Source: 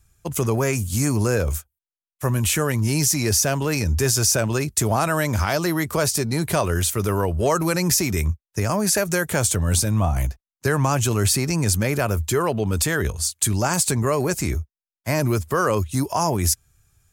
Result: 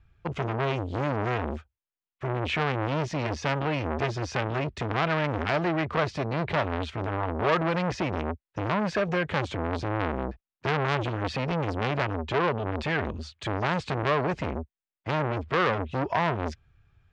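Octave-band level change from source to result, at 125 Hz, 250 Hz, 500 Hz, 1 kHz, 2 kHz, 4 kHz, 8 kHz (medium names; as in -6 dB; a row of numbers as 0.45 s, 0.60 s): -8.5 dB, -6.5 dB, -5.0 dB, -2.0 dB, -3.0 dB, -9.0 dB, -29.5 dB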